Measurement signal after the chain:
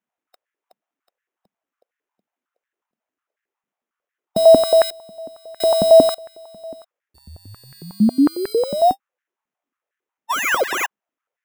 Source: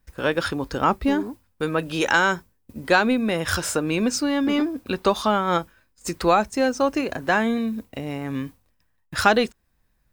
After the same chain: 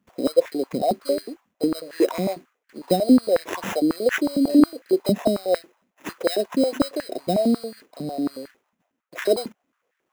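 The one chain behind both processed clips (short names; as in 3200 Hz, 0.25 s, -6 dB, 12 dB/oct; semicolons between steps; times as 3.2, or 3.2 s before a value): brick-wall FIR band-stop 760–5400 Hz; sample-rate reducer 4500 Hz, jitter 0%; stepped high-pass 11 Hz 200–1700 Hz; gain -1.5 dB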